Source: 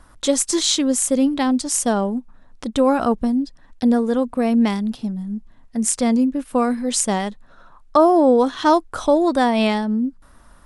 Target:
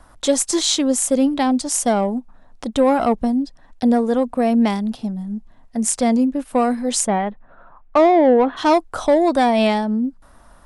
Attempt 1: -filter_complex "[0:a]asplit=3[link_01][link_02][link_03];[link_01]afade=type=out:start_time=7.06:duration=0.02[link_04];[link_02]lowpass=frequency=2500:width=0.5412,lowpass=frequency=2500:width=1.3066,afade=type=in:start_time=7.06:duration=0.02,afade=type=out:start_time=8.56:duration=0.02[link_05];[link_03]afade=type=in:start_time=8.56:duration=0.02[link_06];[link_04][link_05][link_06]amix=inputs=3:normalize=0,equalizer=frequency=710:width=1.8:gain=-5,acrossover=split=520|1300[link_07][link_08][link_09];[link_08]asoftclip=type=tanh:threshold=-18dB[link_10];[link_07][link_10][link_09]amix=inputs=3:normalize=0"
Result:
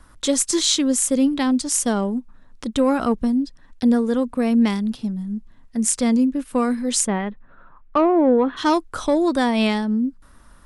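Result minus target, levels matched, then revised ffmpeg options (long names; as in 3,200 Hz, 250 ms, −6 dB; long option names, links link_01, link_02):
1,000 Hz band −4.0 dB
-filter_complex "[0:a]asplit=3[link_01][link_02][link_03];[link_01]afade=type=out:start_time=7.06:duration=0.02[link_04];[link_02]lowpass=frequency=2500:width=0.5412,lowpass=frequency=2500:width=1.3066,afade=type=in:start_time=7.06:duration=0.02,afade=type=out:start_time=8.56:duration=0.02[link_05];[link_03]afade=type=in:start_time=8.56:duration=0.02[link_06];[link_04][link_05][link_06]amix=inputs=3:normalize=0,equalizer=frequency=710:width=1.8:gain=6.5,acrossover=split=520|1300[link_07][link_08][link_09];[link_08]asoftclip=type=tanh:threshold=-18dB[link_10];[link_07][link_10][link_09]amix=inputs=3:normalize=0"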